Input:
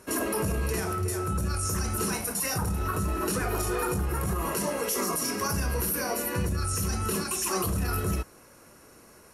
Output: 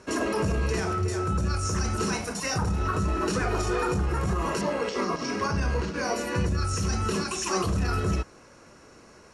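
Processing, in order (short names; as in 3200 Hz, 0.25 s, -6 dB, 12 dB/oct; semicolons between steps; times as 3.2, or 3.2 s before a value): 4.61–6.04 careless resampling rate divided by 4×, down filtered, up hold; LPF 7100 Hz 24 dB/oct; gain +2.5 dB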